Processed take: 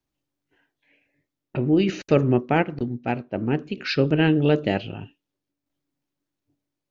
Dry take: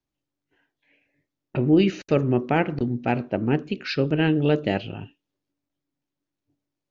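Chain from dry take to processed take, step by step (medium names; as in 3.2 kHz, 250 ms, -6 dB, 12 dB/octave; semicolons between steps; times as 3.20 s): tremolo saw down 0.53 Hz, depth 45%; 2.36–3.36 s: upward expansion 1.5:1, over -41 dBFS; trim +3 dB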